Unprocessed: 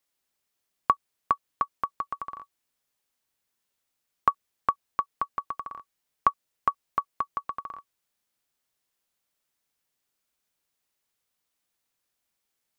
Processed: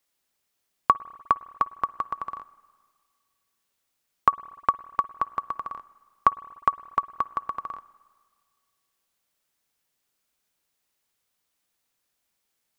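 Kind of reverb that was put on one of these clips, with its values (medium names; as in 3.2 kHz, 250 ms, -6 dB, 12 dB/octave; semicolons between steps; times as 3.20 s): spring tank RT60 1.8 s, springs 51/59 ms, chirp 80 ms, DRR 19 dB; trim +3 dB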